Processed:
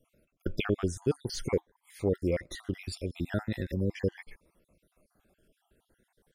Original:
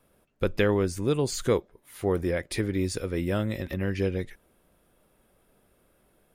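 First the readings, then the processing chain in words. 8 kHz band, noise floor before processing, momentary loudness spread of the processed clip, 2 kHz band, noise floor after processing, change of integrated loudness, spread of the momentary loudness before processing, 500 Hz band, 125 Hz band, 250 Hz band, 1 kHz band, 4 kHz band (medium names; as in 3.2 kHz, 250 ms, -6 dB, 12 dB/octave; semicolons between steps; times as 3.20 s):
-7.5 dB, -67 dBFS, 8 LU, -6.5 dB, -80 dBFS, -5.0 dB, 7 LU, -5.5 dB, -4.5 dB, -5.0 dB, -8.5 dB, -4.5 dB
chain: random holes in the spectrogram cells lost 54%; treble shelf 11 kHz -10 dB; Shepard-style phaser rising 0.43 Hz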